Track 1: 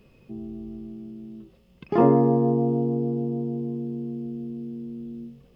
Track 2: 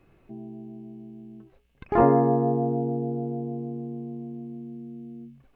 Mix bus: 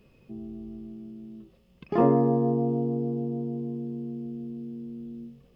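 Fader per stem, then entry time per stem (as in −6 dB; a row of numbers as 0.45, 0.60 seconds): −3.0, −19.5 decibels; 0.00, 0.00 seconds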